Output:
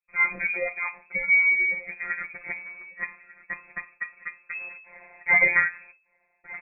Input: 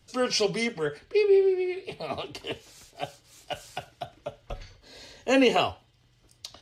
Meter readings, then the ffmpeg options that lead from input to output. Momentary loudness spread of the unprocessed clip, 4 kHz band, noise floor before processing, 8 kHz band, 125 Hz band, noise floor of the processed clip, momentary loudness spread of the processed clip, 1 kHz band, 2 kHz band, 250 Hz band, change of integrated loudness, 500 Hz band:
21 LU, under -40 dB, -63 dBFS, under -40 dB, no reading, -70 dBFS, 20 LU, -4.0 dB, +14.0 dB, -19.0 dB, +2.5 dB, -14.0 dB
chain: -af "agate=range=0.0251:threshold=0.00224:ratio=16:detection=peak,areverse,acompressor=mode=upward:threshold=0.0126:ratio=2.5,areverse,aecho=1:1:1194:0.0944,afftfilt=real='hypot(re,im)*cos(PI*b)':imag='0':win_size=1024:overlap=0.75,lowpass=f=2200:t=q:w=0.5098,lowpass=f=2200:t=q:w=0.6013,lowpass=f=2200:t=q:w=0.9,lowpass=f=2200:t=q:w=2.563,afreqshift=-2600,volume=2"

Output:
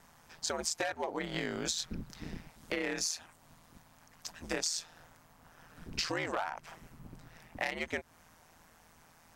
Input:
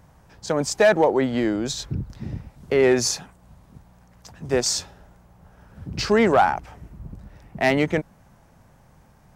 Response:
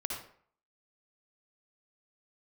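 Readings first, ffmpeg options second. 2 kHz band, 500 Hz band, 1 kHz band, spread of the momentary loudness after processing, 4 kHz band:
-11.0 dB, -19.5 dB, -16.0 dB, 19 LU, -8.0 dB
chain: -af "tiltshelf=f=750:g=-8,acompressor=threshold=0.0501:ratio=20,aeval=exprs='val(0)*sin(2*PI*82*n/s)':c=same,volume=0.794"

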